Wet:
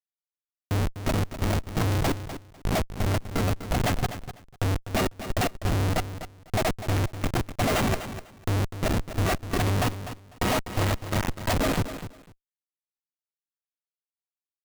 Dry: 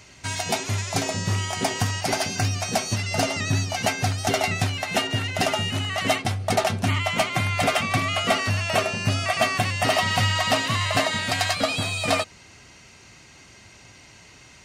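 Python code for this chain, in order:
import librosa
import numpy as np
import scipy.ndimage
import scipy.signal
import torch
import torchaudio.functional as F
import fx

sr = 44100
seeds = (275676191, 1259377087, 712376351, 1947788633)

p1 = fx.step_gate(x, sr, bpm=85, pattern='x...x.x.x.x', floor_db=-60.0, edge_ms=4.5)
p2 = fx.schmitt(p1, sr, flips_db=-22.0)
p3 = p2 + fx.echo_feedback(p2, sr, ms=249, feedback_pct=18, wet_db=-11.5, dry=0)
y = F.gain(torch.from_numpy(p3), 5.5).numpy()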